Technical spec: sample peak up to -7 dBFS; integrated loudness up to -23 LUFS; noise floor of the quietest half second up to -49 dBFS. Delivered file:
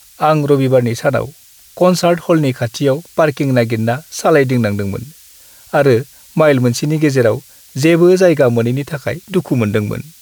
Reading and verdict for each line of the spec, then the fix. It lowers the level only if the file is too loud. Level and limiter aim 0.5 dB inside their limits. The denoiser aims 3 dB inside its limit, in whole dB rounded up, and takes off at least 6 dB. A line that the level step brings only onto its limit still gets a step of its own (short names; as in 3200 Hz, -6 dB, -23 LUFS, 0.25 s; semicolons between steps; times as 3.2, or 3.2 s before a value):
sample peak -1.5 dBFS: fail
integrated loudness -14.5 LUFS: fail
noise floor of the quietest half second -42 dBFS: fail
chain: gain -9 dB